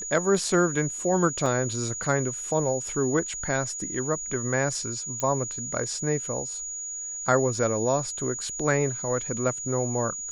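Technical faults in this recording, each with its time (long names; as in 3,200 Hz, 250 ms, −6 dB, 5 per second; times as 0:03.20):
whistle 6,800 Hz −32 dBFS
0:01.46: drop-out 2.3 ms
0:05.20: click −14 dBFS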